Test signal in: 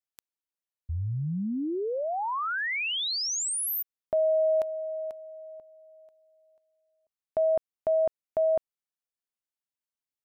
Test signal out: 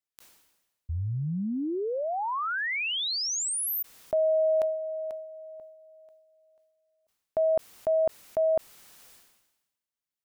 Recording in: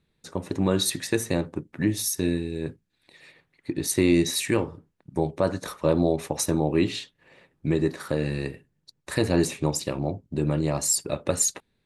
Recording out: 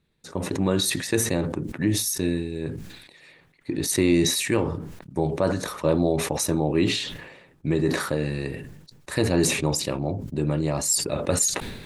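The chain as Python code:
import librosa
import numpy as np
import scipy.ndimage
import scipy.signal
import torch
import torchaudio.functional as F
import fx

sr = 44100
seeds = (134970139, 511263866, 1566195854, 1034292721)

y = fx.sustainer(x, sr, db_per_s=54.0)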